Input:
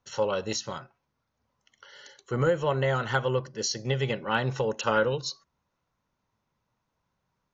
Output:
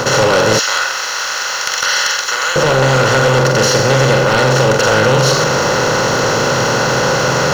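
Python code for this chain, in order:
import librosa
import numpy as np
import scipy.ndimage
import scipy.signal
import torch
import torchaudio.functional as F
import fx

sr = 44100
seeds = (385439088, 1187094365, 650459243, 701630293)

y = fx.bin_compress(x, sr, power=0.2)
y = fx.room_flutter(y, sr, wall_m=7.8, rt60_s=0.37)
y = fx.rider(y, sr, range_db=3, speed_s=0.5)
y = fx.highpass(y, sr, hz=1500.0, slope=12, at=(0.59, 2.56))
y = fx.leveller(y, sr, passes=3)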